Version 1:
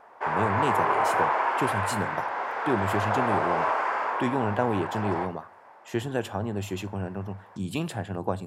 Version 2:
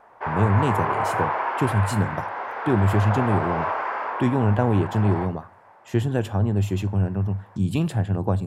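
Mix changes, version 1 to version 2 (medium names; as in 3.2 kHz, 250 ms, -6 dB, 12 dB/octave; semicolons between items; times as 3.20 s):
speech: remove high-pass 440 Hz 6 dB/octave; background: add Gaussian low-pass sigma 1.5 samples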